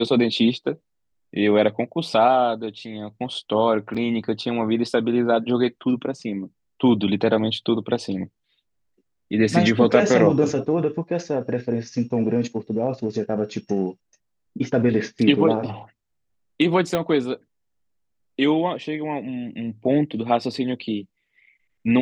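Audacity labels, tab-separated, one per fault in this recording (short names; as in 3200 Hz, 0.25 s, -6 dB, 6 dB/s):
3.940000	3.950000	gap 5.5 ms
16.950000	16.950000	pop -9 dBFS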